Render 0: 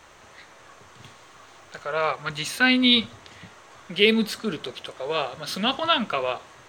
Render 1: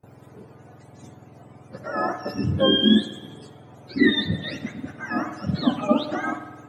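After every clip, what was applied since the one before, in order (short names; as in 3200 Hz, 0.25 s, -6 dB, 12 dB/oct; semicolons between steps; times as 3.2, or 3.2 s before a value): spectrum mirrored in octaves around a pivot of 900 Hz; gate with hold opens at -43 dBFS; spring tank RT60 1.2 s, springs 53 ms, chirp 55 ms, DRR 10 dB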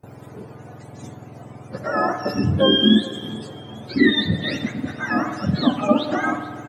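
in parallel at +2 dB: compressor, threshold -27 dBFS, peak gain reduction 14.5 dB; on the sum: feedback echo 0.427 s, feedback 45%, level -20.5 dB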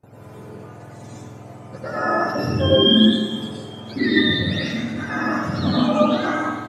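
plate-style reverb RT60 0.81 s, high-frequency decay 1×, pre-delay 85 ms, DRR -7 dB; downsampling 32000 Hz; gain -6.5 dB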